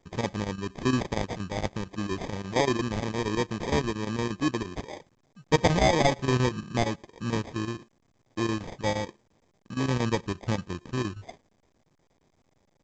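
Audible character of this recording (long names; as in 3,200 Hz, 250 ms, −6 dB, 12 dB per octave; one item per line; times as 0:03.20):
aliases and images of a low sample rate 1,400 Hz, jitter 0%
chopped level 8.6 Hz, depth 65%, duty 80%
a quantiser's noise floor 12 bits, dither none
A-law companding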